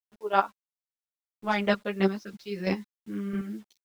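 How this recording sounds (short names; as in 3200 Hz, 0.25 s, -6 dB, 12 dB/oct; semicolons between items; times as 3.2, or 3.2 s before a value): chopped level 3 Hz, depth 60%, duty 20%; a quantiser's noise floor 10-bit, dither none; a shimmering, thickened sound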